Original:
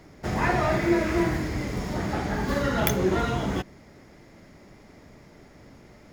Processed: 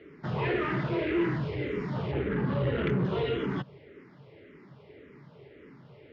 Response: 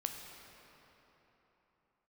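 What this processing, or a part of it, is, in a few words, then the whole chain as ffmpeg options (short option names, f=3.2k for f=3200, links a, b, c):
barber-pole phaser into a guitar amplifier: -filter_complex "[0:a]asettb=1/sr,asplit=3[a][b][c];[a]atrim=end=2.114[d];[b]atrim=start=2.11:end=3.05,asetpts=PTS-STARTPTS,afade=t=in:d=0.004:c=qsin,afade=t=out:st=0.936:d=0.004:c=qsin,bass=f=250:g=8,treble=f=4k:g=-12[e];[c]atrim=start=3.046[f];[d][e]acrossfade=d=0.004:c1=hsin:c2=qsin[g];[g][f]acrossfade=d=0.004:c1=qsin:c2=hsin,asplit=2[h][i];[i]afreqshift=-1.8[j];[h][j]amix=inputs=2:normalize=1,asoftclip=type=tanh:threshold=-24dB,highpass=110,equalizer=f=140:t=q:w=4:g=8,equalizer=f=210:t=q:w=4:g=-3,equalizer=f=420:t=q:w=4:g=10,equalizer=f=730:t=q:w=4:g=-8,equalizer=f=2.9k:t=q:w=4:g=5,lowpass=f=3.6k:w=0.5412,lowpass=f=3.6k:w=1.3066"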